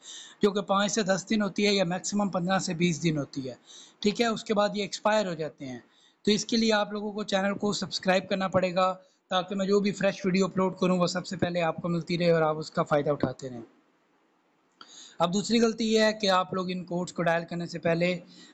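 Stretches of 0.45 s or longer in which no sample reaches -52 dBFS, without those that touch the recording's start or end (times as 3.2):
13.71–14.81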